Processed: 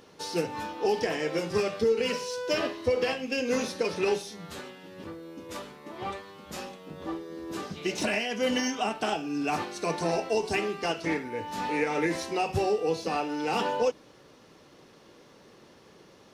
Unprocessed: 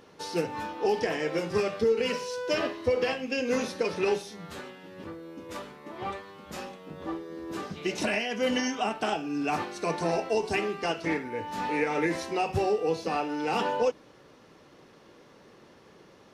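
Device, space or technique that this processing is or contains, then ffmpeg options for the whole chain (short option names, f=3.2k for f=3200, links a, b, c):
exciter from parts: -filter_complex "[0:a]asplit=2[a][b];[b]highpass=2.5k,asoftclip=type=tanh:threshold=-37dB,volume=-5dB[c];[a][c]amix=inputs=2:normalize=0"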